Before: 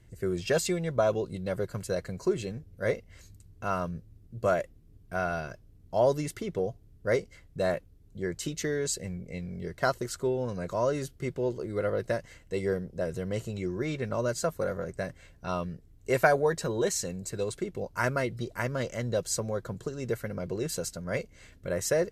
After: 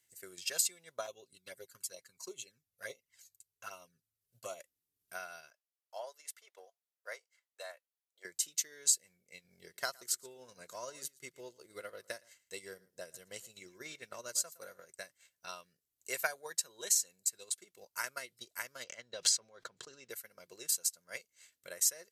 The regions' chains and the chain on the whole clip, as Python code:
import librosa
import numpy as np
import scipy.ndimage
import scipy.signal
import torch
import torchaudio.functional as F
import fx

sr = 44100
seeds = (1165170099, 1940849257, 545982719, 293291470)

y = fx.chain(x, sr, fx.env_flanger(rest_ms=2.3, full_db=-25.5),
    fx.comb(ms=7.5, depth=0.41), at=(1.06, 4.6))
y = fx.chain(y, sr, fx.highpass(hz=570.0, slope=24),
    fx.high_shelf(hz=3000.0, db=-10.5), at=(5.5, 8.25))
y = fx.chain(y, sr, fx.low_shelf(hz=360.0, db=4.0),
    fx.echo_single(ms=114, db=-15.0), at=(9.44, 14.8))
y = fx.chain(y, sr, fx.lowpass(hz=4000.0, slope=12),
    fx.sustainer(db_per_s=32.0), at=(18.84, 20.1))
y = np.diff(y, prepend=0.0)
y = fx.transient(y, sr, attack_db=7, sustain_db=-7)